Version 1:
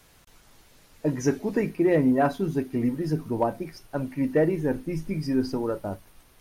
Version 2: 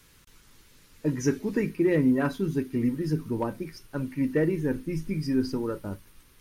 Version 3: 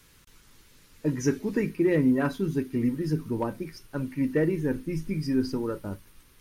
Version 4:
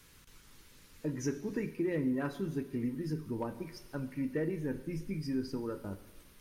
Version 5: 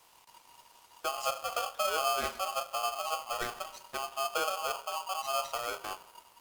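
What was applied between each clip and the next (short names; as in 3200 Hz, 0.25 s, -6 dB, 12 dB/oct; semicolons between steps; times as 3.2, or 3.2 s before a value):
bell 700 Hz -14 dB 0.6 oct
nothing audible
compressor 1.5:1, threshold -42 dBFS, peak gain reduction 8.5 dB; on a send at -11.5 dB: reverb RT60 1.2 s, pre-delay 7 ms; on the sum: gain -2 dB
in parallel at -4.5 dB: crossover distortion -55.5 dBFS; on the sum: polarity switched at an audio rate 950 Hz; gain -2.5 dB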